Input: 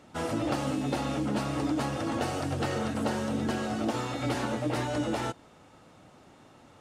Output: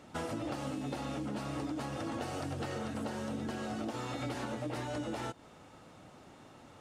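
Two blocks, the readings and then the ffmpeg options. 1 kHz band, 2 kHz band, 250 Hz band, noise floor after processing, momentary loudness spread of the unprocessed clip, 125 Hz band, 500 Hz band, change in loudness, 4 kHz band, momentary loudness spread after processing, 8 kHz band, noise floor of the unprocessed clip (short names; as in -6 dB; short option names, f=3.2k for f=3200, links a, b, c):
-7.5 dB, -7.5 dB, -8.0 dB, -56 dBFS, 2 LU, -7.5 dB, -7.5 dB, -7.5 dB, -7.5 dB, 17 LU, -7.5 dB, -56 dBFS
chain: -af "acompressor=threshold=-35dB:ratio=6"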